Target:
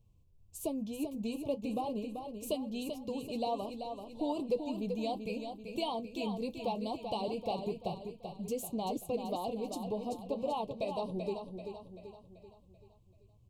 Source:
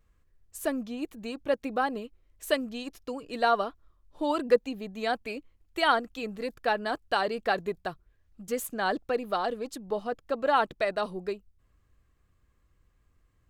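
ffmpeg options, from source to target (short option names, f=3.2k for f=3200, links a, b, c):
-af "flanger=delay=8.9:depth=1.5:regen=-52:speed=1.7:shape=sinusoidal,acompressor=threshold=-36dB:ratio=2,asuperstop=centerf=1600:order=8:qfactor=1.1,equalizer=f=120:t=o:w=1.5:g=13.5,aecho=1:1:386|772|1158|1544|1930|2316:0.447|0.214|0.103|0.0494|0.0237|0.0114"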